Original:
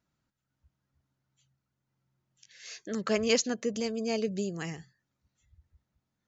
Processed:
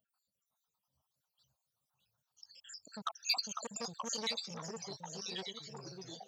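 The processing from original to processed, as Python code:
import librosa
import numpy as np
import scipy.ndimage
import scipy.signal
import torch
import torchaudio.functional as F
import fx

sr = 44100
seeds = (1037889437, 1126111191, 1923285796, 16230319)

y = fx.spec_dropout(x, sr, seeds[0], share_pct=78)
y = fx.highpass(y, sr, hz=540.0, slope=6)
y = fx.high_shelf(y, sr, hz=6800.0, db=8.5)
y = fx.fixed_phaser(y, sr, hz=860.0, stages=4)
y = fx.echo_alternate(y, sr, ms=501, hz=1800.0, feedback_pct=63, wet_db=-6.0)
y = fx.echo_pitch(y, sr, ms=348, semitones=-3, count=3, db_per_echo=-6.0)
y = fx.transformer_sat(y, sr, knee_hz=3500.0)
y = F.gain(torch.from_numpy(y), 6.5).numpy()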